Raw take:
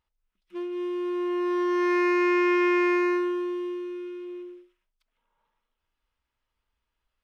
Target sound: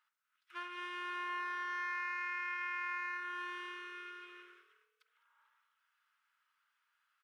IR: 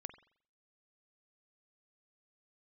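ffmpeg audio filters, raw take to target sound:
-filter_complex "[0:a]highpass=frequency=1400:width_type=q:width=4,acompressor=threshold=-35dB:ratio=16,asplit=4[link_01][link_02][link_03][link_04];[link_02]adelay=206,afreqshift=38,volume=-19.5dB[link_05];[link_03]adelay=412,afreqshift=76,volume=-26.8dB[link_06];[link_04]adelay=618,afreqshift=114,volume=-34.2dB[link_07];[link_01][link_05][link_06][link_07]amix=inputs=4:normalize=0[link_08];[1:a]atrim=start_sample=2205[link_09];[link_08][link_09]afir=irnorm=-1:irlink=0,volume=5dB"

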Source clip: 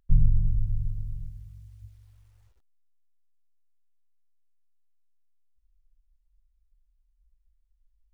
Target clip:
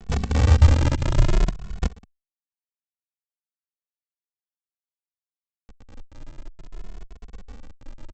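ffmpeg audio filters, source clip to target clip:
ffmpeg -i in.wav -filter_complex "[0:a]aemphasis=mode=reproduction:type=bsi,bandreject=frequency=59.32:width_type=h:width=4,bandreject=frequency=118.64:width_type=h:width=4,bandreject=frequency=177.96:width_type=h:width=4,afftfilt=real='re*lt(hypot(re,im),1.41)':imag='im*lt(hypot(re,im),1.41)':win_size=1024:overlap=0.75,equalizer=frequency=200:width_type=o:width=1.1:gain=6.5,areverse,acompressor=mode=upward:threshold=-36dB:ratio=2.5,areverse,asetrate=33038,aresample=44100,atempo=1.33484,aecho=1:1:58|379|502:0.299|0.15|0.178,aphaser=in_gain=1:out_gain=1:delay=4.6:decay=0.44:speed=1.6:type=sinusoidal,aresample=16000,acrusher=bits=5:dc=4:mix=0:aa=0.000001,aresample=44100,asplit=2[link_01][link_02];[link_02]adelay=2.3,afreqshift=0.56[link_03];[link_01][link_03]amix=inputs=2:normalize=1,volume=8dB" out.wav

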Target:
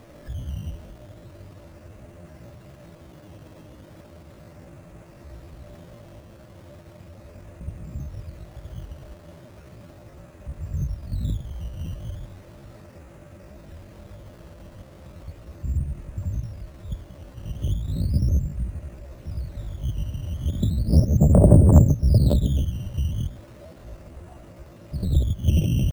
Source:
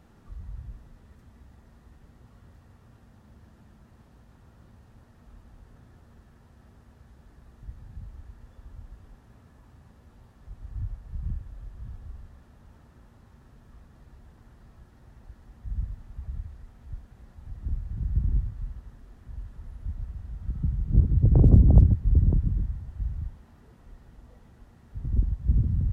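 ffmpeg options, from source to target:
ffmpeg -i in.wav -filter_complex "[0:a]asetrate=64194,aresample=44100,atempo=0.686977,asplit=2[link_01][link_02];[link_02]acompressor=threshold=-32dB:ratio=6,volume=1.5dB[link_03];[link_01][link_03]amix=inputs=2:normalize=0,acrusher=samples=10:mix=1:aa=0.000001:lfo=1:lforange=10:lforate=0.36,equalizer=frequency=590:width_type=o:width=0.32:gain=14,volume=1dB" out.wav

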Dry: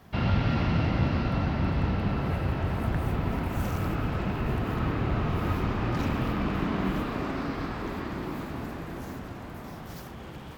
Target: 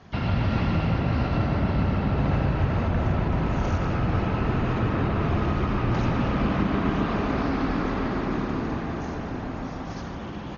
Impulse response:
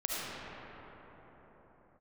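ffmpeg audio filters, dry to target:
-filter_complex "[0:a]alimiter=limit=-20.5dB:level=0:latency=1:release=218,asplit=2[link_01][link_02];[link_02]adelay=150,lowpass=frequency=1600:poles=1,volume=-4dB,asplit=2[link_03][link_04];[link_04]adelay=150,lowpass=frequency=1600:poles=1,volume=0.55,asplit=2[link_05][link_06];[link_06]adelay=150,lowpass=frequency=1600:poles=1,volume=0.55,asplit=2[link_07][link_08];[link_08]adelay=150,lowpass=frequency=1600:poles=1,volume=0.55,asplit=2[link_09][link_10];[link_10]adelay=150,lowpass=frequency=1600:poles=1,volume=0.55,asplit=2[link_11][link_12];[link_12]adelay=150,lowpass=frequency=1600:poles=1,volume=0.55,asplit=2[link_13][link_14];[link_14]adelay=150,lowpass=frequency=1600:poles=1,volume=0.55[link_15];[link_03][link_05][link_07][link_09][link_11][link_13][link_15]amix=inputs=7:normalize=0[link_16];[link_01][link_16]amix=inputs=2:normalize=0,asoftclip=type=hard:threshold=-18dB,asplit=2[link_17][link_18];[1:a]atrim=start_sample=2205[link_19];[link_18][link_19]afir=irnorm=-1:irlink=0,volume=-9.5dB[link_20];[link_17][link_20]amix=inputs=2:normalize=0,volume=1dB" -ar 48000 -c:a ac3 -b:a 32k

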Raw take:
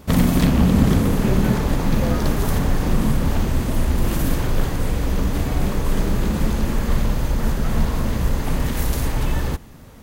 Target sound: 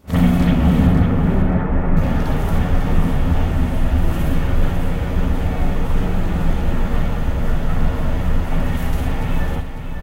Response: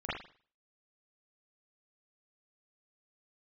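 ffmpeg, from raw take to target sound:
-filter_complex "[0:a]asettb=1/sr,asplit=3[link_01][link_02][link_03];[link_01]atrim=end=0.874[link_04];[link_02]atrim=start=0.87:end=1.97,asetpts=PTS-STARTPTS,afade=type=in:duration=0.004:curve=qsin,afade=type=out:start_time=1.096:duration=0.004:curve=qsin,lowpass=frequency=2100:width=0.5412,lowpass=frequency=2100:width=1.3066[link_05];[link_03]atrim=start=1.966[link_06];[link_04][link_05]acrossfade=duration=0.004:curve1=hsin:curve2=qsin[link_07];[link_07][link_06]acrossfade=duration=0.004:curve1=qsin:curve2=hsin,aecho=1:1:550|1100|1650:0.398|0.0995|0.0249[link_08];[1:a]atrim=start_sample=2205,atrim=end_sample=3087[link_09];[link_08][link_09]afir=irnorm=-1:irlink=0,volume=-4dB"

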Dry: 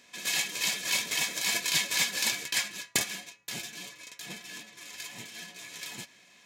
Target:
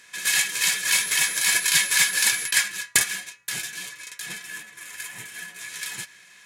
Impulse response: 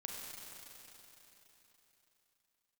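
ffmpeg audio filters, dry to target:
-filter_complex "[0:a]equalizer=frequency=250:width_type=o:width=0.67:gain=-10,equalizer=frequency=630:width_type=o:width=0.67:gain=-7,equalizer=frequency=1600:width_type=o:width=0.67:gain=9,equalizer=frequency=10000:width_type=o:width=0.67:gain=10,asettb=1/sr,asplit=3[link_01][link_02][link_03];[link_01]atrim=end=0.934[link_04];[link_02]atrim=start=0.93:end=2.51,asetpts=PTS-STARTPTS,afade=type=in:duration=0.004:curve=qsin,afade=type=out:start_time=1.576:duration=0.004:curve=qsin,aeval=exprs='val(0)+0.0178*sin(2*PI*11000*n/s)':channel_layout=same[link_05];[link_03]atrim=start=2.506[link_06];[link_04][link_05]acrossfade=duration=0.004:curve1=hsin:curve2=qsin[link_07];[link_07][link_06]acrossfade=duration=0.004:curve1=qsin:curve2=hsin,asettb=1/sr,asplit=3[link_08][link_09][link_10];[link_08]atrim=end=4.454[link_11];[link_09]atrim=start=4.45:end=5.61,asetpts=PTS-STARTPTS,afade=type=in:duration=0.004:curve=qsin,afade=type=out:start_time=1.156:duration=0.004:curve=qsin,equalizer=frequency=4600:width_type=o:width=1.3:gain=-6.5[link_12];[link_10]atrim=start=5.606[link_13];[link_11][link_12]acrossfade=duration=0.004:curve1=hsin:curve2=qsin[link_14];[link_14][link_13]acrossfade=duration=0.004:curve1=qsin:curve2=hsin,volume=4dB"

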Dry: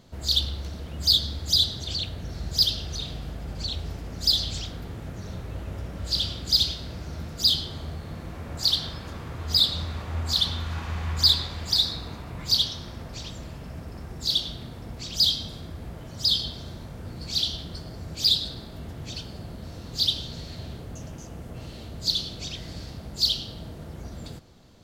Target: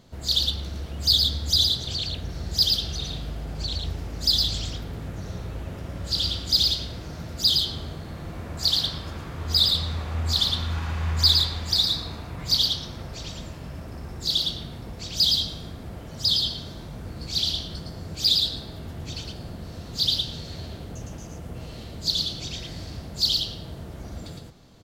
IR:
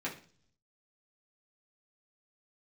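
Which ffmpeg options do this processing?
-af "aecho=1:1:111:0.668"

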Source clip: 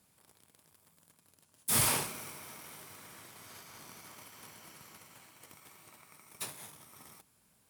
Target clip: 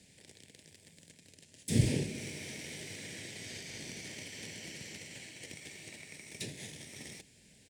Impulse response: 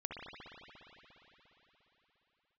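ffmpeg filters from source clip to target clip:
-filter_complex "[0:a]firequalizer=gain_entry='entry(500,0);entry(1200,-26);entry(1800,2);entry(8000,0);entry(12000,-19)':delay=0.05:min_phase=1,acrossover=split=410[link_01][link_02];[link_02]acompressor=threshold=-53dB:ratio=4[link_03];[link_01][link_03]amix=inputs=2:normalize=0,volume=10.5dB"

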